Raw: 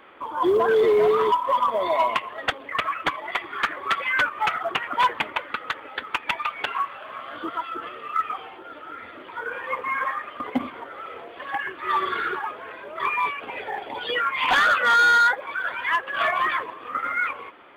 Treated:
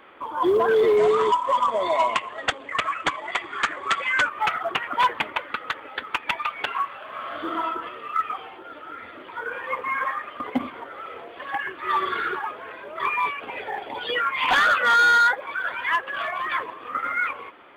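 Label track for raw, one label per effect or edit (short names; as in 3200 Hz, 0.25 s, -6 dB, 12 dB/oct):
0.970000	4.280000	synth low-pass 7600 Hz, resonance Q 3.6
7.090000	7.630000	reverb throw, RT60 0.82 s, DRR -0.5 dB
16.070000	16.510000	compressor 3:1, threshold -26 dBFS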